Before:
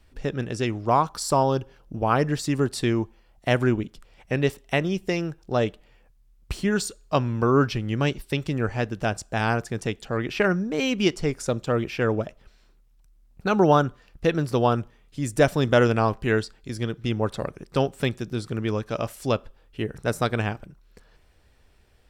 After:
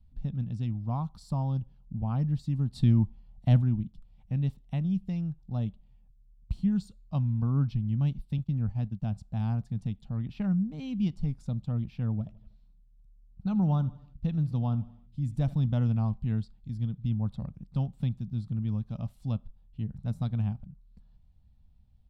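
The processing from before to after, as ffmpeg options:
-filter_complex "[0:a]asplit=3[a][b][c];[a]afade=t=out:st=2.74:d=0.02[d];[b]acontrast=88,afade=t=in:st=2.74:d=0.02,afade=t=out:st=3.6:d=0.02[e];[c]afade=t=in:st=3.6:d=0.02[f];[d][e][f]amix=inputs=3:normalize=0,asettb=1/sr,asplit=3[g][h][i];[g]atrim=end=8.384[j];[h]atrim=start=8.38:end=9.02,asetpts=PTS-STARTPTS,afade=t=in:d=0.004:c=qsin,afade=t=out:st=0.636:d=0.004:c=qsin,agate=range=-33dB:threshold=-31dB:ratio=3:release=100:detection=peak[k];[i]atrim=start=9.016[l];[j][k]acrossfade=d=0.004:c1=hsin:c2=qsin[m];[m][l]acrossfade=d=0.004:c1=qsin:c2=hsin,asettb=1/sr,asplit=3[n][o][p];[n]atrim=end=12.144[q];[o]atrim=start=12.14:end=15.66,asetpts=PTS-STARTPTS,afade=t=in:d=0.004:c=qsin,afade=t=out:st=3.516:d=0.004:c=qsin,aecho=1:1:80|160|240|320:0.112|0.0595|0.0315|0.0167,atrim=end_sample=155232[r];[p]atrim=start=15.656[s];[q][r]acrossfade=d=0.004:c1=hsin:c2=qsin[t];[t][s]acrossfade=d=0.004:c1=qsin:c2=hsin,firequalizer=gain_entry='entry(200,0);entry(370,-28);entry(780,-16);entry(1600,-29);entry(3800,-17);entry(5800,-27)':delay=0.05:min_phase=1"

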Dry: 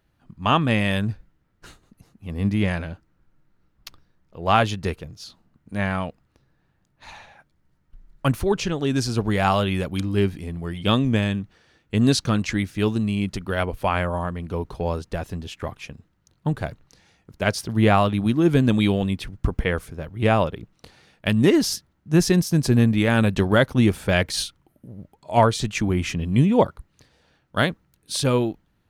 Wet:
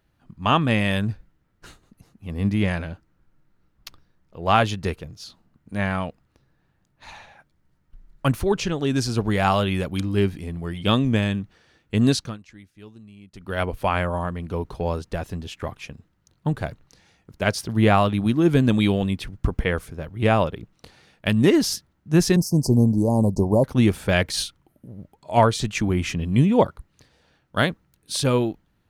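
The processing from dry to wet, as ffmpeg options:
-filter_complex "[0:a]asettb=1/sr,asplit=3[a][b][c];[a]atrim=end=22.364[d];[b]atrim=start=22.36:end=23.64,asetpts=PTS-STARTPTS,afade=t=in:d=0.004:c=qsin,afade=t=out:st=1.276:d=0.004:c=qsin,asuperstop=centerf=2200:order=20:qfactor=0.61[e];[c]atrim=start=23.636[f];[d][e]acrossfade=d=0.004:c1=hsin:c2=qsin[g];[g][f]acrossfade=d=0.004:c1=qsin:c2=hsin,asplit=3[h][i][j];[h]atrim=end=12.38,asetpts=PTS-STARTPTS,afade=t=out:st=12.07:d=0.31:silence=0.0749894[k];[i]atrim=start=12.38:end=13.32,asetpts=PTS-STARTPTS,volume=-22.5dB[l];[j]atrim=start=13.32,asetpts=PTS-STARTPTS,afade=t=in:d=0.31:silence=0.0749894[m];[k][l][m]concat=n=3:v=0:a=1"

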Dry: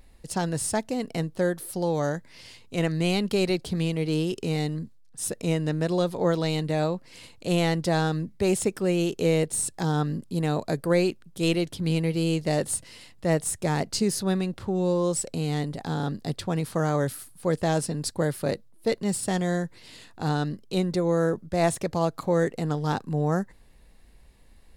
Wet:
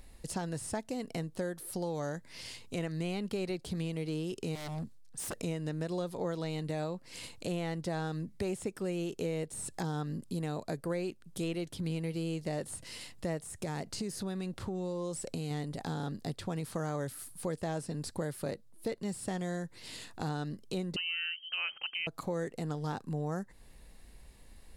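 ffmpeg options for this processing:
-filter_complex "[0:a]asettb=1/sr,asplit=3[a][b][c];[a]atrim=end=4.554[d];[b]atrim=start=4.55:end=5.35,asetpts=PTS-STARTPTS,afade=t=in:d=0.004:c=qsin,afade=t=out:st=0.796:d=0.004:c=qsin,aeval=exprs='0.0316*(abs(mod(val(0)/0.0316+3,4)-2)-1)':c=same[e];[c]atrim=start=5.346[f];[d][e]acrossfade=d=0.004:c1=hsin:c2=qsin[g];[g][f]acrossfade=d=0.004:c1=qsin:c2=hsin,asettb=1/sr,asplit=3[h][i][j];[h]atrim=end=13.394[k];[i]atrim=start=13.39:end=15.51,asetpts=PTS-STARTPTS,afade=t=in:d=0.004:c=qsin,afade=t=out:st=2.116:d=0.004:c=qsin,acompressor=threshold=-28dB:ratio=2.5:attack=3.2:release=140:knee=1:detection=peak[l];[j]atrim=start=15.506[m];[k][l]acrossfade=d=0.004:c1=hsin:c2=qsin[n];[n][m]acrossfade=d=0.004:c1=qsin:c2=hsin,asettb=1/sr,asplit=3[o][p][q];[o]atrim=end=20.964[r];[p]atrim=start=20.96:end=22.07,asetpts=PTS-STARTPTS,afade=t=in:d=0.004:c=qsin,afade=t=out:st=1.106:d=0.004:c=qsin,lowpass=f=2.7k:t=q:w=0.5098,lowpass=f=2.7k:t=q:w=0.6013,lowpass=f=2.7k:t=q:w=0.9,lowpass=f=2.7k:t=q:w=2.563,afreqshift=-3200[s];[q]atrim=start=22.066[t];[r][s]acrossfade=d=0.004:c1=hsin:c2=qsin[u];[u][t]acrossfade=d=0.004:c1=qsin:c2=hsin,acrossover=split=2800[v][w];[w]acompressor=threshold=-39dB:ratio=4:attack=1:release=60[x];[v][x]amix=inputs=2:normalize=0,equalizer=f=9k:w=0.64:g=4.5,acompressor=threshold=-36dB:ratio=3"

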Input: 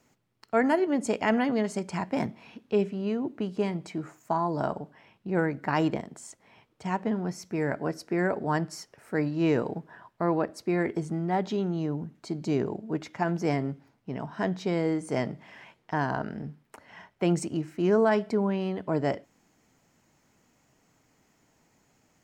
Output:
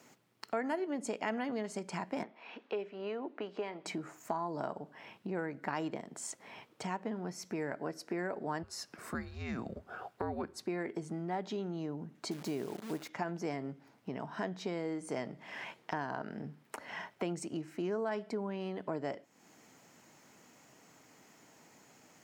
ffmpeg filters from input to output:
-filter_complex "[0:a]asettb=1/sr,asplit=3[a][b][c];[a]atrim=end=2.234[d];[b]atrim=start=2.23:end=3.86,asetpts=PTS-STARTPTS,afade=t=in:d=0.004:c=qsin,afade=t=out:st=1.626:d=0.004:c=qsin,highpass=450,lowpass=3.1k[e];[c]atrim=start=3.856[f];[d][e]acrossfade=d=0.004:c1=hsin:c2=qsin[g];[g][f]acrossfade=d=0.004:c1=qsin:c2=hsin,asplit=3[h][i][j];[h]afade=t=out:st=8.62:d=0.02[k];[i]afreqshift=-240,afade=t=in:st=8.62:d=0.02,afade=t=out:st=10.66:d=0.02[l];[j]afade=t=in:st=10.66:d=0.02[m];[k][l][m]amix=inputs=3:normalize=0,asettb=1/sr,asplit=3[n][o][p];[n]atrim=end=12.314[q];[o]atrim=start=12.31:end=13.09,asetpts=PTS-STARTPTS,afade=t=in:d=0.004:c=qsin,afade=t=out:st=0.776:d=0.004:c=qsin,acrusher=bits=8:dc=4:mix=0:aa=0.000001[r];[p]atrim=start=13.086[s];[q][r]acrossfade=d=0.004:c1=hsin:c2=qsin[t];[t][s]acrossfade=d=0.004:c1=qsin:c2=hsin,highpass=100,acompressor=threshold=-45dB:ratio=3,lowshelf=f=130:g=-11.5,volume=7dB"

